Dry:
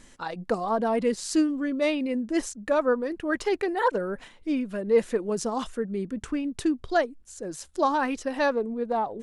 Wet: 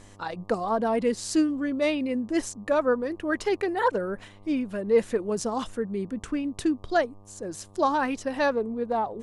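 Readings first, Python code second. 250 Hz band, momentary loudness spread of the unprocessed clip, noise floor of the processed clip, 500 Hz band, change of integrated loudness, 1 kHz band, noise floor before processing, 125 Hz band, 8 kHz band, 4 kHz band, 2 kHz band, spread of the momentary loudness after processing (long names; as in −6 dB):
0.0 dB, 8 LU, −50 dBFS, 0.0 dB, 0.0 dB, 0.0 dB, −54 dBFS, +1.0 dB, 0.0 dB, 0.0 dB, 0.0 dB, 9 LU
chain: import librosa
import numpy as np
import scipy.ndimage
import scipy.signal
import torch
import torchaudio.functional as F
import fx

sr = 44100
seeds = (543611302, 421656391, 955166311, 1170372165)

y = fx.dmg_buzz(x, sr, base_hz=100.0, harmonics=12, level_db=-53.0, tilt_db=-5, odd_only=False)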